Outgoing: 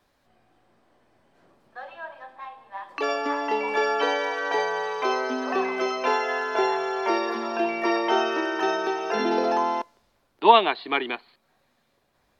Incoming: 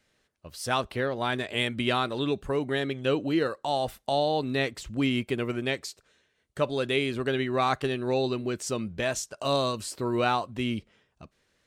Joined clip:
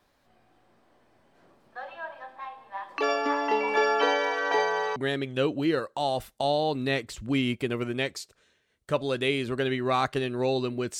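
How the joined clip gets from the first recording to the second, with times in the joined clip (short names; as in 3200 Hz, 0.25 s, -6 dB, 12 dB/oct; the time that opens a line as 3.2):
outgoing
4.96 switch to incoming from 2.64 s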